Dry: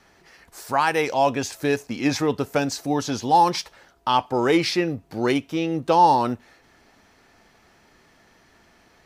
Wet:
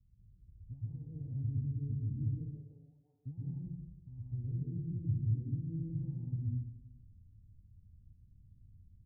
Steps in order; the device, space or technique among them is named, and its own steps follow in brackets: 2.24–3.25 s: high-pass 380 Hz -> 790 Hz 24 dB/octave; club heard from the street (peak limiter -16.5 dBFS, peak gain reduction 10 dB; low-pass 120 Hz 24 dB/octave; reverberation RT60 1.0 s, pre-delay 111 ms, DRR -7 dB); trim +1 dB

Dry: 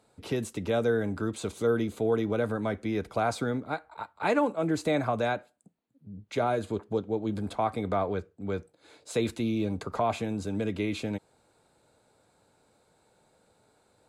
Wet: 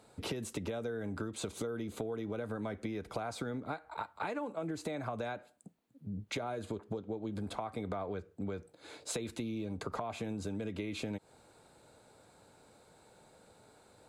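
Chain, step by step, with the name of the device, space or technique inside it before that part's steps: serial compression, peaks first (compression, threshold -35 dBFS, peak gain reduction 13.5 dB; compression 3:1, threshold -40 dBFS, peak gain reduction 6.5 dB); trim +4.5 dB

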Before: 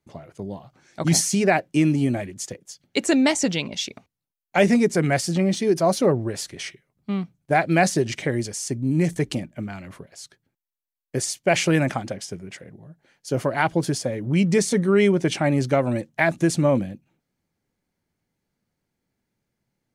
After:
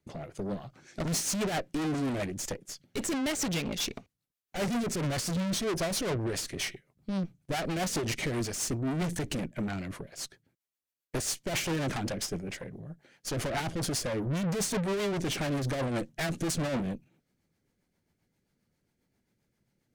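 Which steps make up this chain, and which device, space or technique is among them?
overdriven rotary cabinet (valve stage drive 35 dB, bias 0.7; rotary cabinet horn 7.5 Hz); trim +7.5 dB

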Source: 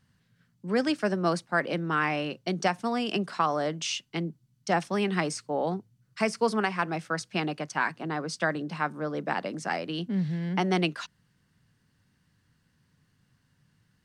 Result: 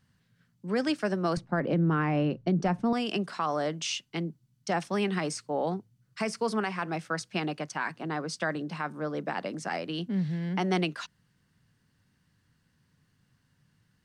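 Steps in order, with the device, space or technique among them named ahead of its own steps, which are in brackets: 1.37–2.93 s: tilt EQ -4 dB/octave; clipper into limiter (hard clipper -12 dBFS, distortion -38 dB; peak limiter -17.5 dBFS, peak gain reduction 5.5 dB); trim -1 dB

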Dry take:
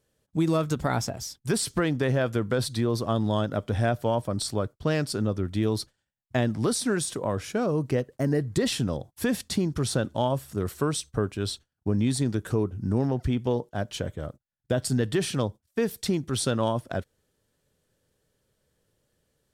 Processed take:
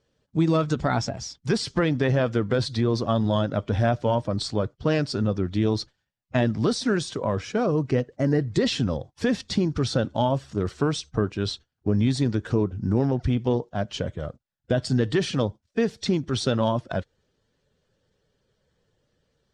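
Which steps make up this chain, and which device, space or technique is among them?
clip after many re-uploads (low-pass 6.3 kHz 24 dB/octave; coarse spectral quantiser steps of 15 dB); trim +3 dB

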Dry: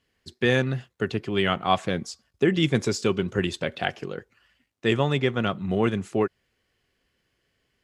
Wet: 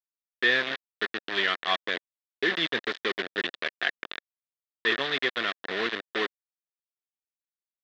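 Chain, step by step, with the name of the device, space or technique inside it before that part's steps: hand-held game console (bit crusher 4-bit; cabinet simulation 420–4100 Hz, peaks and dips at 570 Hz -4 dB, 840 Hz -8 dB, 1.8 kHz +10 dB, 3.6 kHz +8 dB); trim -4 dB

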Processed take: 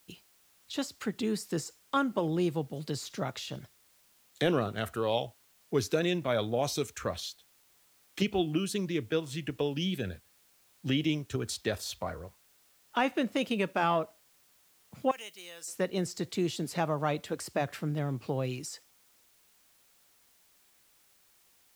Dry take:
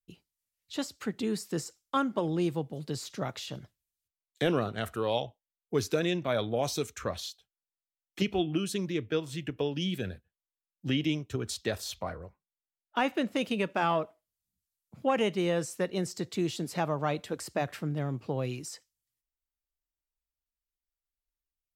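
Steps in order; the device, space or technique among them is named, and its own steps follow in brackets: noise-reduction cassette on a plain deck (tape noise reduction on one side only encoder only; wow and flutter 28 cents; white noise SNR 32 dB); 15.11–15.68 s: differentiator

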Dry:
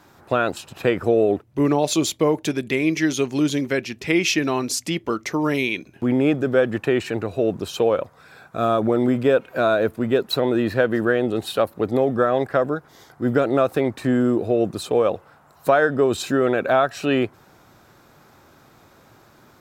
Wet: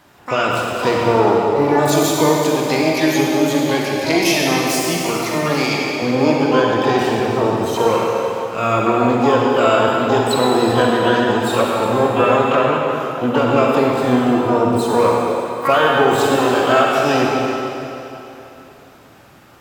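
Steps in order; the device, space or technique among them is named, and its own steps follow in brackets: shimmer-style reverb (harmony voices +12 st -5 dB; reverberation RT60 3.2 s, pre-delay 37 ms, DRR -2.5 dB)

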